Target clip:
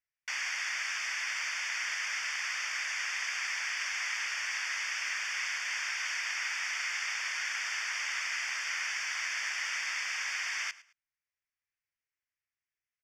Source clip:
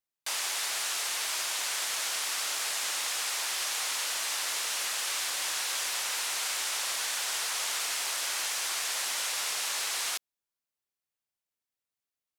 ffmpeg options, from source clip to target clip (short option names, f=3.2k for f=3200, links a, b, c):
-af "firequalizer=gain_entry='entry(140,0);entry(210,-20);entry(370,-21);entry(530,-17);entry(1100,-10);entry(1700,-7);entry(2500,-7);entry(3600,-13);entry(6000,-4);entry(9700,-25)':delay=0.05:min_phase=1,aecho=1:1:103|206:0.112|0.0281,asetrate=41895,aresample=44100,asuperstop=centerf=4000:order=8:qfactor=5.4,equalizer=f=2k:w=1.2:g=13"